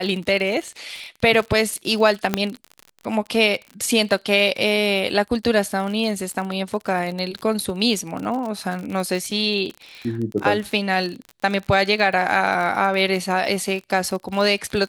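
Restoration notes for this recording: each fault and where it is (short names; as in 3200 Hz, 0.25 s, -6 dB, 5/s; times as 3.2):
crackle 43/s -27 dBFS
2.34 pop -4 dBFS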